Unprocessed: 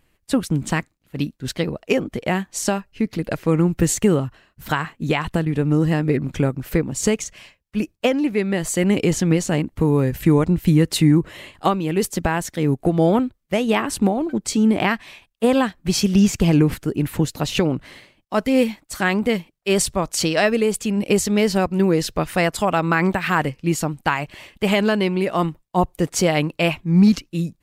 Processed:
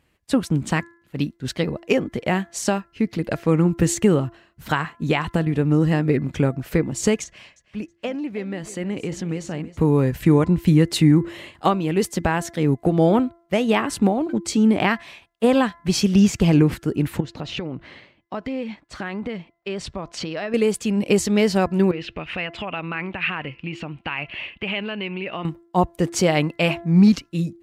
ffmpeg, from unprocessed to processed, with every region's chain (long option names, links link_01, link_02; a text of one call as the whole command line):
ffmpeg -i in.wav -filter_complex "[0:a]asettb=1/sr,asplit=3[link_01][link_02][link_03];[link_01]atrim=end=7.244[link_04];[link_02]atrim=start=7.24:end=9.77,asetpts=PTS-STARTPTS,afade=type=in:duration=0.004:curve=qsin,afade=type=out:start_time=2.526:duration=0.004:curve=qsin,highshelf=frequency=9600:gain=-11,acompressor=threshold=-39dB:ratio=1.5:attack=3.2:release=140:knee=1:detection=peak,aecho=1:1:321|642|963:0.178|0.0427|0.0102,atrim=end_sample=111573[link_05];[link_03]atrim=start=9.766[link_06];[link_04][link_05]acrossfade=duration=0.004:curve1=hsin:curve2=qsin[link_07];[link_07][link_06]acrossfade=duration=0.004:curve1=qsin:curve2=hsin,asettb=1/sr,asplit=3[link_08][link_09][link_10];[link_08]atrim=end=17.204[link_11];[link_09]atrim=start=17.2:end=20.54,asetpts=PTS-STARTPTS,afade=type=in:duration=0.004:curve=qsin,afade=type=out:start_time=3.336:duration=0.004:curve=qsin,lowpass=3900,acompressor=threshold=-25dB:ratio=5:attack=3.2:release=140:knee=1:detection=peak[link_12];[link_10]atrim=start=20.536[link_13];[link_11][link_12]acrossfade=duration=0.004:curve1=hsin:curve2=qsin[link_14];[link_14][link_13]acrossfade=duration=0.004:curve1=qsin:curve2=hsin,asettb=1/sr,asplit=3[link_15][link_16][link_17];[link_15]atrim=end=21.914[link_18];[link_16]atrim=start=21.91:end=25.45,asetpts=PTS-STARTPTS,afade=type=in:duration=0.004:curve=qsin,afade=type=out:start_time=3.536:duration=0.004:curve=qsin,acompressor=threshold=-28dB:ratio=4:attack=3.2:release=140:knee=1:detection=peak,lowpass=frequency=2700:width_type=q:width=5.1[link_19];[link_17]atrim=start=25.446[link_20];[link_18][link_19]acrossfade=duration=0.004:curve1=hsin:curve2=qsin[link_21];[link_21][link_20]acrossfade=duration=0.004:curve1=qsin:curve2=hsin,highpass=47,highshelf=frequency=10000:gain=-9,bandreject=frequency=339.9:width_type=h:width=4,bandreject=frequency=679.8:width_type=h:width=4,bandreject=frequency=1019.7:width_type=h:width=4,bandreject=frequency=1359.6:width_type=h:width=4,bandreject=frequency=1699.5:width_type=h:width=4,bandreject=frequency=2039.4:width_type=h:width=4" out.wav